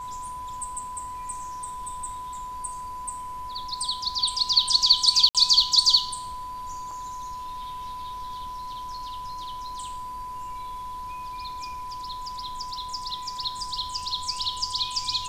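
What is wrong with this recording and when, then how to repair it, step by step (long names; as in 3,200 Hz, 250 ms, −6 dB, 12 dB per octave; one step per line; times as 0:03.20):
whistle 1,000 Hz −33 dBFS
0:05.29–0:05.35: drop-out 57 ms
0:06.91: drop-out 3.5 ms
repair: notch filter 1,000 Hz, Q 30
repair the gap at 0:05.29, 57 ms
repair the gap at 0:06.91, 3.5 ms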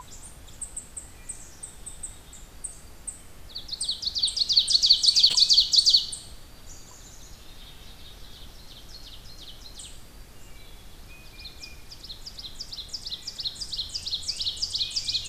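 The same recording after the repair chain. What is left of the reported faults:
none of them is left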